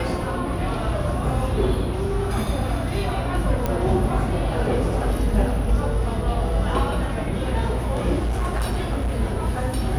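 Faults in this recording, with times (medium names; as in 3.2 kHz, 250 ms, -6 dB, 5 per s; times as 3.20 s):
3.66 s: pop -10 dBFS
8.19–9.18 s: clipped -19.5 dBFS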